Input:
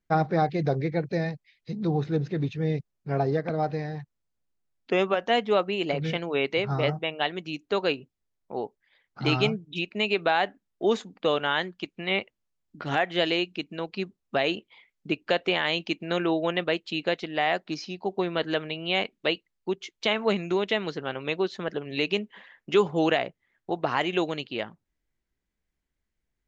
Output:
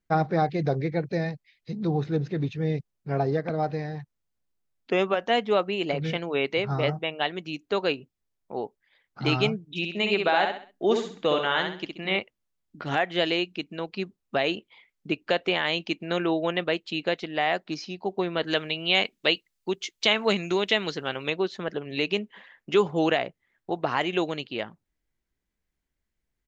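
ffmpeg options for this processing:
-filter_complex "[0:a]asplit=3[a][b][c];[a]afade=t=out:st=9.82:d=0.02[d];[b]aecho=1:1:65|130|195|260:0.562|0.197|0.0689|0.0241,afade=t=in:st=9.82:d=0.02,afade=t=out:st=12.16:d=0.02[e];[c]afade=t=in:st=12.16:d=0.02[f];[d][e][f]amix=inputs=3:normalize=0,asettb=1/sr,asplit=3[g][h][i];[g]atrim=end=18.474[j];[h]atrim=start=18.47:end=21.3,asetpts=PTS-STARTPTS,afade=t=in:d=0.004:c=qsin,afade=t=out:st=2.826:d=0.004:c=qsin,highshelf=f=2.7k:g=10[k];[i]atrim=start=21.296[l];[j][k]acrossfade=d=0.004:c1=hsin:c2=qsin[m];[m][l]acrossfade=d=0.004:c1=qsin:c2=hsin"

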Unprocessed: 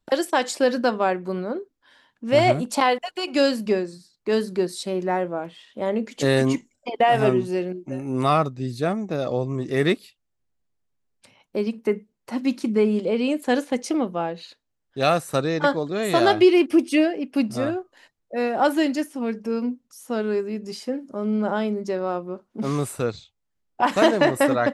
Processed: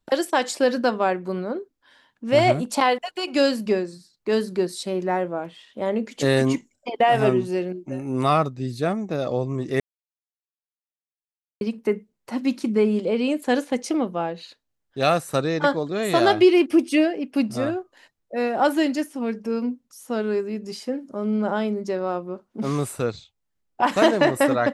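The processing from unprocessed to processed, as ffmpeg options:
-filter_complex "[0:a]asplit=3[a][b][c];[a]atrim=end=9.8,asetpts=PTS-STARTPTS,afade=t=out:st=9.796:d=0.004:c=hsin[d];[b]atrim=start=9.8:end=11.61,asetpts=PTS-STARTPTS,volume=0[e];[c]atrim=start=11.61,asetpts=PTS-STARTPTS,afade=t=in:d=0.004:c=hsin[f];[d][e][f]concat=n=3:v=0:a=1"

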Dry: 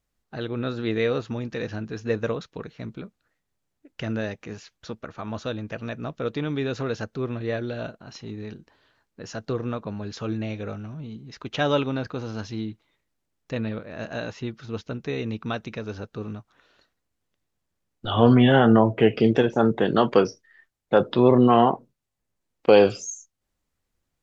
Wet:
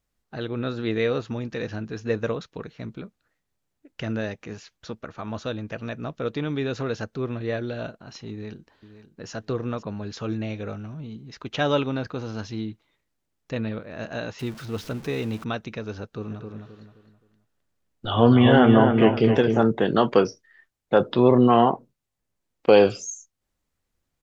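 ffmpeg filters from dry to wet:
-filter_complex "[0:a]asplit=2[a][b];[b]afade=t=in:st=8.3:d=0.01,afade=t=out:st=9.3:d=0.01,aecho=0:1:520|1040:0.223872|0.0447744[c];[a][c]amix=inputs=2:normalize=0,asettb=1/sr,asplit=3[d][e][f];[d]atrim=end=14.394[g];[e]atrim=start=14.39:end=15.44,asetpts=PTS-STARTPTS,afade=t=in:d=0.004:c=qsin,afade=t=out:st=1.046:d=0.004:c=qsin,aeval=exprs='val(0)+0.5*0.0126*sgn(val(0))':c=same[h];[f]atrim=start=15.436[i];[g][h]acrossfade=d=0.004:c1=hsin:c2=qsin[j];[j][i]acrossfade=d=0.004:c1=qsin:c2=hsin,asplit=3[k][l][m];[k]afade=t=out:st=16.3:d=0.02[n];[l]asplit=2[o][p];[p]adelay=262,lowpass=f=2.7k:p=1,volume=-5dB,asplit=2[q][r];[r]adelay=262,lowpass=f=2.7k:p=1,volume=0.36,asplit=2[s][t];[t]adelay=262,lowpass=f=2.7k:p=1,volume=0.36,asplit=2[u][v];[v]adelay=262,lowpass=f=2.7k:p=1,volume=0.36[w];[o][q][s][u][w]amix=inputs=5:normalize=0,afade=t=in:st=16.3:d=0.02,afade=t=out:st=19.62:d=0.02[x];[m]afade=t=in:st=19.62:d=0.02[y];[n][x][y]amix=inputs=3:normalize=0"

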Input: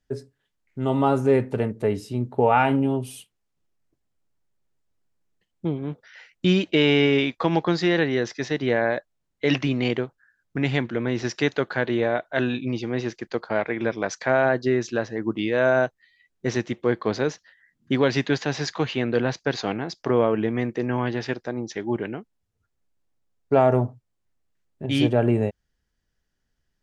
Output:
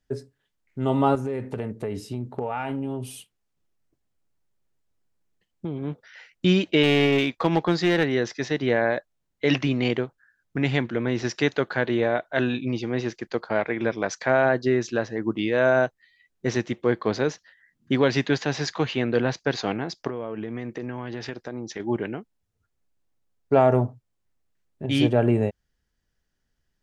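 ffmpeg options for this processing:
-filter_complex "[0:a]asettb=1/sr,asplit=3[a][b][c];[a]atrim=end=1.154[d];[b]atrim=start=1.15:end=5.84,asetpts=PTS-STARTPTS,afade=t=in:d=0.004:c=qsin,afade=t=out:st=4.686:d=0.004:c=qsin,acompressor=threshold=-25dB:ratio=6:attack=3.2:release=140:knee=1:detection=peak[e];[c]atrim=start=5.836[f];[d][e]acrossfade=d=0.004:c1=hsin:c2=qsin[g];[g][f]acrossfade=d=0.004:c1=qsin:c2=hsin,asettb=1/sr,asplit=3[h][i][j];[h]atrim=end=6.834[k];[i]atrim=start=6.83:end=8.13,asetpts=PTS-STARTPTS,afade=t=in:d=0.004:c=qsin,afade=t=out:st=1.296:d=0.004:c=qsin,aeval=exprs='clip(val(0),-1,0.119)':c=same[l];[j]atrim=start=8.126[m];[k][l]acrossfade=d=0.004:c1=hsin:c2=qsin[n];[n][m]acrossfade=d=0.004:c1=qsin:c2=hsin,asettb=1/sr,asplit=3[o][p][q];[o]atrim=end=20.074[r];[p]atrim=start=20.07:end=21.8,asetpts=PTS-STARTPTS,afade=t=in:d=0.004:c=qsin,afade=t=out:st=1.726:d=0.004:c=qsin,acompressor=threshold=-28dB:ratio=6:attack=3.2:release=140:knee=1:detection=peak[s];[q]atrim=start=21.796[t];[r][s]acrossfade=d=0.004:c1=hsin:c2=qsin[u];[u][t]acrossfade=d=0.004:c1=qsin:c2=hsin"

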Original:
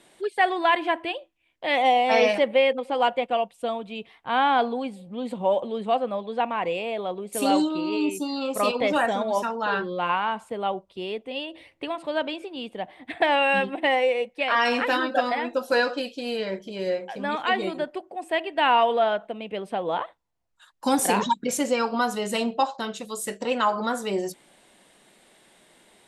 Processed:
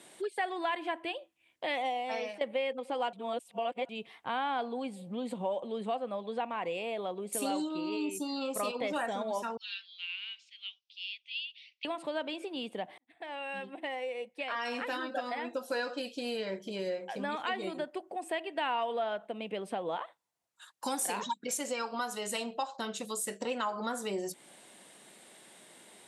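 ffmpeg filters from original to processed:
-filter_complex "[0:a]asettb=1/sr,asplit=3[a][b][c];[a]atrim=end=9.574[d];[b]atrim=start=9.57:end=11.85,asetpts=PTS-STARTPTS,afade=t=in:d=0.004:c=qsin,afade=t=out:st=2.276:d=0.004:c=qsin,asuperpass=centerf=3800:order=8:qfactor=1.1[e];[c]atrim=start=11.846[f];[d][e]acrossfade=d=0.004:c1=hsin:c2=qsin[g];[g][f]acrossfade=d=0.004:c1=qsin:c2=hsin,asettb=1/sr,asplit=3[h][i][j];[h]atrim=end=19.964[k];[i]atrim=start=19.96:end=22.72,asetpts=PTS-STARTPTS,afade=t=in:d=0.004:c=qsin,afade=t=out:st=2.756:d=0.004:c=qsin,lowshelf=f=390:g=-9[l];[j]atrim=start=22.716[m];[k][l]acrossfade=d=0.004:c1=hsin:c2=qsin[n];[n][m]acrossfade=d=0.004:c1=qsin:c2=hsin,asplit=5[o][p][q][r][s];[o]atrim=end=2.41,asetpts=PTS-STARTPTS,afade=t=out:st=1.68:d=0.73:silence=0.0891251[t];[p]atrim=start=2.41:end=3.132,asetpts=PTS-STARTPTS,afade=t=in:d=0.004:c=hsin:silence=0.0891251[u];[q]atrim=start=3.128:end=3.892,asetpts=PTS-STARTPTS,areverse[v];[r]atrim=start=3.888:end=12.98,asetpts=PTS-STARTPTS,afade=t=out:st=9.088:d=0.004:c=hsin[w];[s]atrim=start=12.98,asetpts=PTS-STARTPTS,afade=t=in:d=3.37[x];[t][u]concat=n=2:v=0:a=1[y];[y][v]acrossfade=d=0.004:c1=hsin:c2=hsin[z];[w][x]concat=n=2:v=0:a=1[aa];[z][aa]acrossfade=d=0.004:c1=hsin:c2=hsin,highpass=120,equalizer=f=9k:w=0.9:g=5,acompressor=threshold=-36dB:ratio=2.5"

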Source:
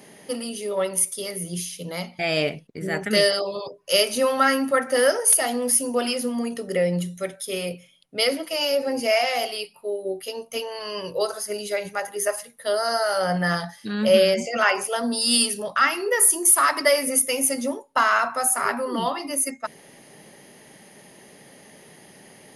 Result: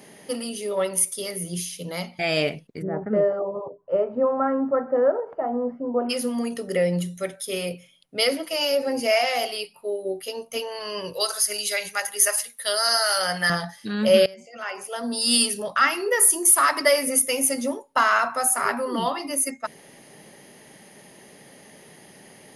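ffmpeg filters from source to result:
-filter_complex "[0:a]asplit=3[a][b][c];[a]afade=t=out:st=2.81:d=0.02[d];[b]lowpass=f=1.1k:w=0.5412,lowpass=f=1.1k:w=1.3066,afade=t=in:st=2.81:d=0.02,afade=t=out:st=6.09:d=0.02[e];[c]afade=t=in:st=6.09:d=0.02[f];[d][e][f]amix=inputs=3:normalize=0,asettb=1/sr,asplit=3[g][h][i];[g]atrim=end=11.134[j];[h]atrim=start=11.13:end=13.5,asetpts=PTS-STARTPTS,afade=t=in:d=0.004:c=qsin,afade=t=out:st=2.366:d=0.004:c=qsin,tiltshelf=f=1.1k:g=-10[k];[i]atrim=start=13.496[l];[j][k]acrossfade=d=0.004:c1=hsin:c2=qsin[m];[m][l]acrossfade=d=0.004:c1=qsin:c2=hsin,asplit=2[n][o];[n]atrim=end=14.26,asetpts=PTS-STARTPTS,afade=t=out:st=14.256:d=0.004:c=hsin:silence=0.0891251[p];[o]atrim=start=14.26,asetpts=PTS-STARTPTS,afade=t=in:d=1.02:c=qua:silence=0.0891251[q];[p][q]concat=n=2:v=0:a=1"

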